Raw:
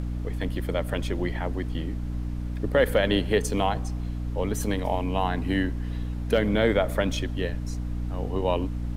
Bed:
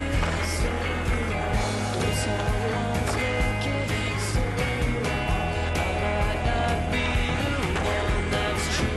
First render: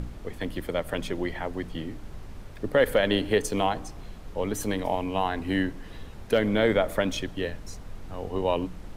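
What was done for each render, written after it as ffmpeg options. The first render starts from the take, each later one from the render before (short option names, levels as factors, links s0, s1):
-af "bandreject=f=60:t=h:w=4,bandreject=f=120:t=h:w=4,bandreject=f=180:t=h:w=4,bandreject=f=240:t=h:w=4,bandreject=f=300:t=h:w=4"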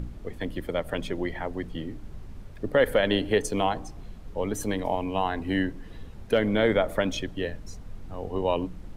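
-af "afftdn=nr=6:nf=-42"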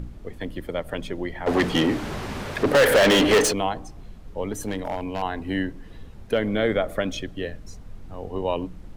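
-filter_complex "[0:a]asplit=3[s0][s1][s2];[s0]afade=t=out:st=1.46:d=0.02[s3];[s1]asplit=2[s4][s5];[s5]highpass=f=720:p=1,volume=44.7,asoftclip=type=tanh:threshold=0.335[s6];[s4][s6]amix=inputs=2:normalize=0,lowpass=f=4600:p=1,volume=0.501,afade=t=in:st=1.46:d=0.02,afade=t=out:st=3.51:d=0.02[s7];[s2]afade=t=in:st=3.51:d=0.02[s8];[s3][s7][s8]amix=inputs=3:normalize=0,asettb=1/sr,asplit=3[s9][s10][s11];[s9]atrim=end=4.524[s12];[s10]atrim=start=4.52:end=5.22,asetpts=PTS-STARTPTS,afade=t=in:d=0.004:c=qsin,afade=t=out:st=0.696:d=0.004:c=qsin,volume=11.9,asoftclip=hard,volume=0.0841[s13];[s11]atrim=start=5.216[s14];[s12][s13]acrossfade=d=0.004:c1=hsin:c2=qsin[s15];[s15][s14]acrossfade=d=0.004:c1=qsin:c2=hsin,asettb=1/sr,asplit=3[s16][s17][s18];[s16]atrim=end=6.514[s19];[s17]atrim=start=6.51:end=7.65,asetpts=PTS-STARTPTS,afade=t=in:d=0.004:c=qsin,afade=t=out:st=1.136:d=0.004:c=qsin,asuperstop=centerf=920:order=4:qfactor=6.7[s20];[s18]atrim=start=7.646[s21];[s19][s20]acrossfade=d=0.004:c1=hsin:c2=qsin[s22];[s22][s21]acrossfade=d=0.004:c1=qsin:c2=hsin"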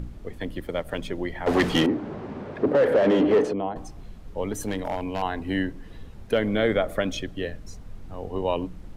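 -filter_complex "[0:a]asettb=1/sr,asplit=3[s0][s1][s2];[s0]atrim=end=0.594[s3];[s1]atrim=start=0.59:end=1.05,asetpts=PTS-STARTPTS,afade=t=in:d=0.004:c=qsin,afade=t=out:st=0.456:d=0.004:c=qsin,aeval=exprs='sgn(val(0))*max(abs(val(0))-0.00178,0)':c=same[s4];[s2]atrim=start=1.046[s5];[s3][s4]acrossfade=d=0.004:c1=hsin:c2=qsin[s6];[s6][s5]acrossfade=d=0.004:c1=qsin:c2=hsin,asettb=1/sr,asplit=3[s7][s8][s9];[s7]atrim=end=1.864[s10];[s8]atrim=start=1.86:end=3.76,asetpts=PTS-STARTPTS,afade=t=in:d=0.004:c=qsin,afade=t=out:st=1.896:d=0.004:c=qsin,bandpass=f=320:t=q:w=0.71[s11];[s9]atrim=start=3.756[s12];[s10][s11]acrossfade=d=0.004:c1=hsin:c2=qsin[s13];[s13][s12]acrossfade=d=0.004:c1=qsin:c2=hsin"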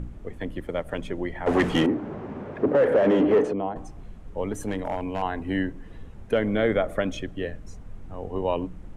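-af "lowpass=9300,equalizer=f=4500:w=1.3:g=-9"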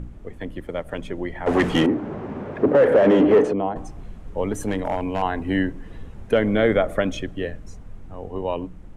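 -af "dynaudnorm=f=300:g=11:m=1.68"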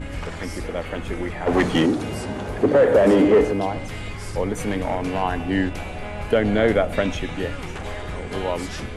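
-filter_complex "[1:a]volume=0.447[s0];[0:a][s0]amix=inputs=2:normalize=0"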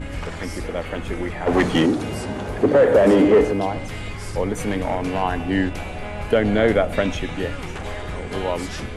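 -af "volume=1.12"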